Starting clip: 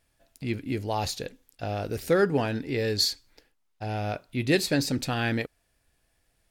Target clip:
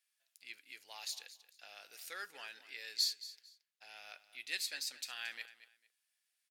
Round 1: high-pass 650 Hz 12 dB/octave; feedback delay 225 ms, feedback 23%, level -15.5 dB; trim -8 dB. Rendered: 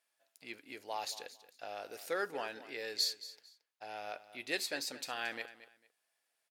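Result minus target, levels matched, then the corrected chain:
500 Hz band +17.0 dB
high-pass 2.1 kHz 12 dB/octave; feedback delay 225 ms, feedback 23%, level -15.5 dB; trim -8 dB

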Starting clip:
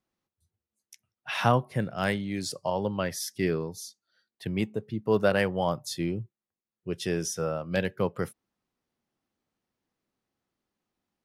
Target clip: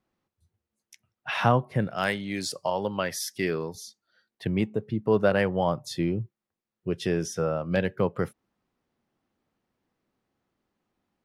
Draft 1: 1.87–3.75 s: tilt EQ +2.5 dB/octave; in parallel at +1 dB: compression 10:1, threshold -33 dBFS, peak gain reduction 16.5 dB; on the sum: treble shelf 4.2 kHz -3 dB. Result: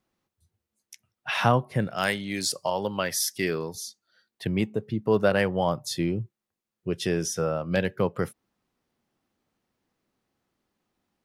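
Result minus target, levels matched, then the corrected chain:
8 kHz band +5.5 dB
1.87–3.75 s: tilt EQ +2.5 dB/octave; in parallel at +1 dB: compression 10:1, threshold -33 dBFS, peak gain reduction 16.5 dB; on the sum: treble shelf 4.2 kHz -11.5 dB

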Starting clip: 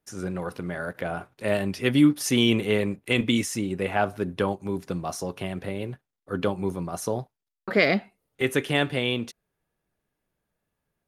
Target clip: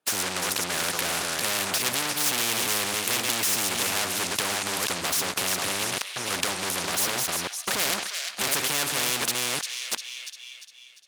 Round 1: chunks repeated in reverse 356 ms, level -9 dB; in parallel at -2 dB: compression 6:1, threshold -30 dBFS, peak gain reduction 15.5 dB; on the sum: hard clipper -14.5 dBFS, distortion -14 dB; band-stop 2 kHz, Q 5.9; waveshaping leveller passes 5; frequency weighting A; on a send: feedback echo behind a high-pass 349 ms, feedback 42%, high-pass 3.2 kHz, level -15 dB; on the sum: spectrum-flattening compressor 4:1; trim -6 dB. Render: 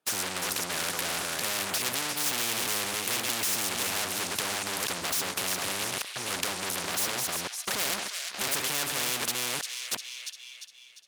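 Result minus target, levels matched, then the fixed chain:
hard clipper: distortion +24 dB
chunks repeated in reverse 356 ms, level -9 dB; in parallel at -2 dB: compression 6:1, threshold -30 dBFS, peak gain reduction 15.5 dB; on the sum: hard clipper -7.5 dBFS, distortion -39 dB; band-stop 2 kHz, Q 5.9; waveshaping leveller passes 5; frequency weighting A; on a send: feedback echo behind a high-pass 349 ms, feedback 42%, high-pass 3.2 kHz, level -15 dB; on the sum: spectrum-flattening compressor 4:1; trim -6 dB

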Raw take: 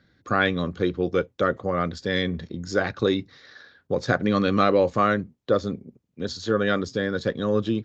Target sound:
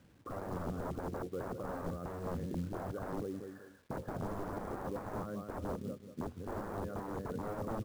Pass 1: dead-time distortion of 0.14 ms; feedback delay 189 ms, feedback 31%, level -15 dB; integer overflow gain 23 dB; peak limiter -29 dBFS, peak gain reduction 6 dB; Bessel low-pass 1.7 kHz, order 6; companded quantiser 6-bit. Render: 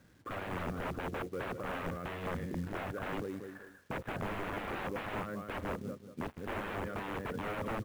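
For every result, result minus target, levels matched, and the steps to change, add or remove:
dead-time distortion: distortion +20 dB; 2 kHz band +9.0 dB
change: dead-time distortion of 0.028 ms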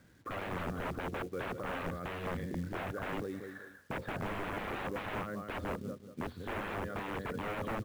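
2 kHz band +9.5 dB
change: Bessel low-pass 830 Hz, order 6

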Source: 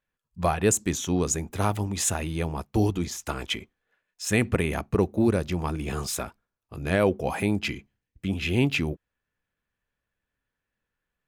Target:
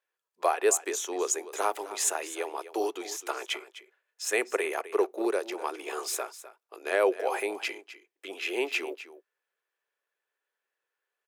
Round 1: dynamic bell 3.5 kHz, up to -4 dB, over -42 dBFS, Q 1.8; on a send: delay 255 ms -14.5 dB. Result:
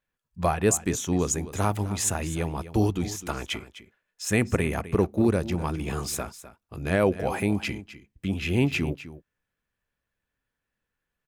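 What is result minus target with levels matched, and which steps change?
500 Hz band -2.5 dB
add after dynamic bell: elliptic high-pass 380 Hz, stop band 60 dB

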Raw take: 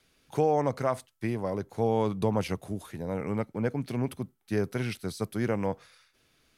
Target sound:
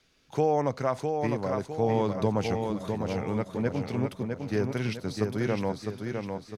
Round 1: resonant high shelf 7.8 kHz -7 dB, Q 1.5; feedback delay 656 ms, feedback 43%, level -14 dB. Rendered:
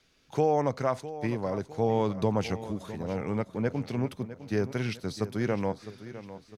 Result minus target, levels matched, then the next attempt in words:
echo-to-direct -9 dB
resonant high shelf 7.8 kHz -7 dB, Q 1.5; feedback delay 656 ms, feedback 43%, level -5 dB

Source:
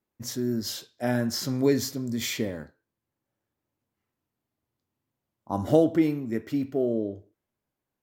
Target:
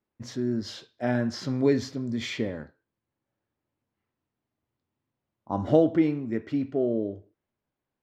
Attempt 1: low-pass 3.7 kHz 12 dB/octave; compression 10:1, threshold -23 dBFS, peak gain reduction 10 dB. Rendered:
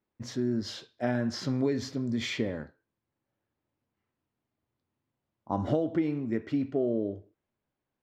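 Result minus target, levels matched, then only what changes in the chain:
compression: peak gain reduction +10 dB
remove: compression 10:1, threshold -23 dBFS, peak gain reduction 10 dB

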